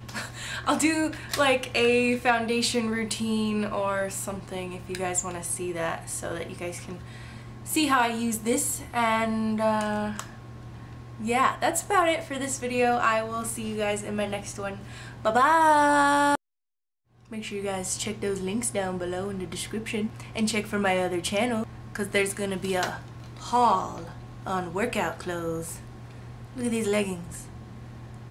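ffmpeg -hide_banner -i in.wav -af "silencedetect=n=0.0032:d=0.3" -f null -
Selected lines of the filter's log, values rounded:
silence_start: 16.35
silence_end: 17.19 | silence_duration: 0.83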